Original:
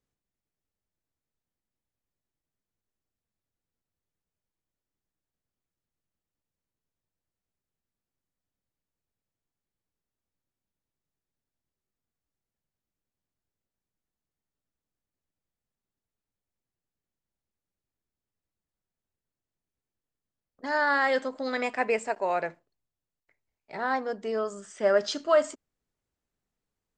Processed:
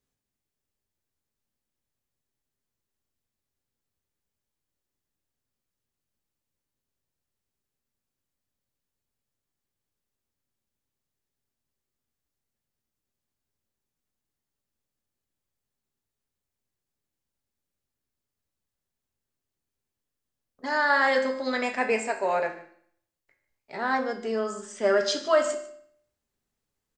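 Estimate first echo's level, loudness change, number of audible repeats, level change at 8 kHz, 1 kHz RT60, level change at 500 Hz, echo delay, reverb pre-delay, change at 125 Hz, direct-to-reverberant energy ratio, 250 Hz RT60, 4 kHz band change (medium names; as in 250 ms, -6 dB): -17.5 dB, +1.5 dB, 1, +5.0 dB, 0.60 s, +1.0 dB, 149 ms, 4 ms, no reading, 4.0 dB, 0.65 s, +4.0 dB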